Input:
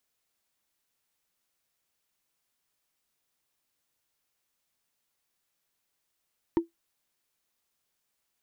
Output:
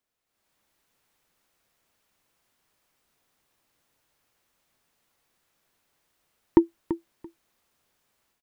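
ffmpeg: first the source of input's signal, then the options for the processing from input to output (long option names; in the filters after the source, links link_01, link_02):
-f lavfi -i "aevalsrc='0.158*pow(10,-3*t/0.14)*sin(2*PI*335*t)+0.0501*pow(10,-3*t/0.041)*sin(2*PI*923.6*t)+0.0158*pow(10,-3*t/0.018)*sin(2*PI*1810.3*t)+0.00501*pow(10,-3*t/0.01)*sin(2*PI*2992.6*t)+0.00158*pow(10,-3*t/0.006)*sin(2*PI*4468.9*t)':duration=0.45:sample_rate=44100"
-filter_complex "[0:a]highshelf=frequency=2700:gain=-8.5,dynaudnorm=framelen=260:gausssize=3:maxgain=12dB,asplit=2[link_01][link_02];[link_02]aecho=0:1:337|674:0.251|0.0427[link_03];[link_01][link_03]amix=inputs=2:normalize=0"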